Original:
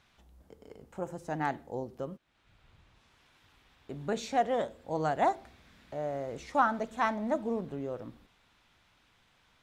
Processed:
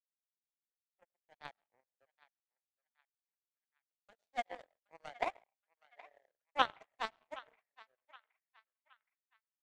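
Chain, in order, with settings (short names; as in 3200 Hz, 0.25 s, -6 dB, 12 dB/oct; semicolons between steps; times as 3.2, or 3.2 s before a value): transient shaper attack +1 dB, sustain -7 dB; steep high-pass 500 Hz 48 dB/oct; on a send at -9.5 dB: reverb RT60 0.65 s, pre-delay 60 ms; on the sum: power-law curve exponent 3; narrowing echo 0.77 s, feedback 44%, band-pass 1900 Hz, level -17.5 dB; gain +3.5 dB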